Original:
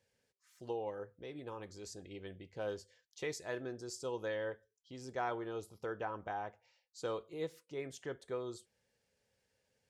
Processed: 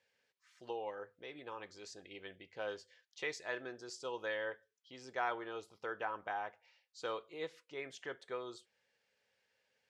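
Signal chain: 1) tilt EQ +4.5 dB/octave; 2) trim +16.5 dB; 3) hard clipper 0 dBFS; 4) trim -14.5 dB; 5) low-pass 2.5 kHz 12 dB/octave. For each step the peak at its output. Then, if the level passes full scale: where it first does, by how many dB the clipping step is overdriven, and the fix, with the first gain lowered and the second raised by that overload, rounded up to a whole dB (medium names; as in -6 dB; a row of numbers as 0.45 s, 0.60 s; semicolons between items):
-21.5 dBFS, -5.0 dBFS, -5.0 dBFS, -19.5 dBFS, -23.0 dBFS; nothing clips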